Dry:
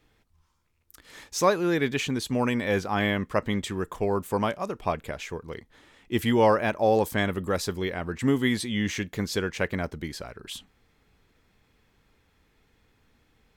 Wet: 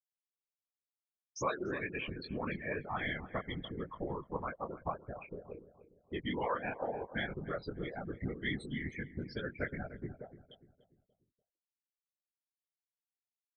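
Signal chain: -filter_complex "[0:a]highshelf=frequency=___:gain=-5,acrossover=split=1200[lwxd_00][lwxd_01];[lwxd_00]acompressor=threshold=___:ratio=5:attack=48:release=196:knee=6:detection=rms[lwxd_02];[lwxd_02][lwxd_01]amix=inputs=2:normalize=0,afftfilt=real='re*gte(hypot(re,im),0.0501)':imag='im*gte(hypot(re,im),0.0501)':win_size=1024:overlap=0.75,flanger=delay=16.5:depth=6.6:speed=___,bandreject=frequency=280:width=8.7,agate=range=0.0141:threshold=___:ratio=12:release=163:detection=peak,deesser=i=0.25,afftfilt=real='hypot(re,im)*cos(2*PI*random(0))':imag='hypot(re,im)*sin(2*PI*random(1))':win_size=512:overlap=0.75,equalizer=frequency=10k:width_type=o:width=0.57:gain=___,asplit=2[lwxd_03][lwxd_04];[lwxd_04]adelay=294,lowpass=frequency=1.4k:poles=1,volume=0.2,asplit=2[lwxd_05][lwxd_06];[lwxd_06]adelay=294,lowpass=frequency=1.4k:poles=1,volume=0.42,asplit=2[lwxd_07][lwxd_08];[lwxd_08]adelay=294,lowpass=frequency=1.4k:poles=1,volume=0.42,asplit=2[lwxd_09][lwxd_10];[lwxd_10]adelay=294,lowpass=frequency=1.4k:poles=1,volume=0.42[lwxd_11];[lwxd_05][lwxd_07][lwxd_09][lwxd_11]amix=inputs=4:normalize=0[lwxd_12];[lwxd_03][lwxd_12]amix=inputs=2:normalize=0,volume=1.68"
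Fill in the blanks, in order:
2.1k, 0.02, 2, 0.00282, 3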